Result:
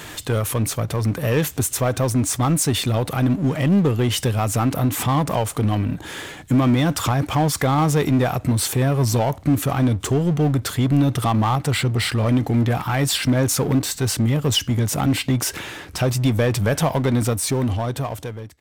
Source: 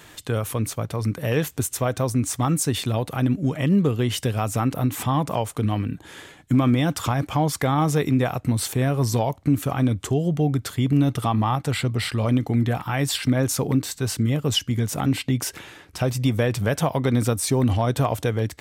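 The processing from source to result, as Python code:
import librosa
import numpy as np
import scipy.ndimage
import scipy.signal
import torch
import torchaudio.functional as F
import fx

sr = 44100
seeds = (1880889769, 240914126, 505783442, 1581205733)

y = fx.fade_out_tail(x, sr, length_s=1.72)
y = fx.power_curve(y, sr, exponent=0.7)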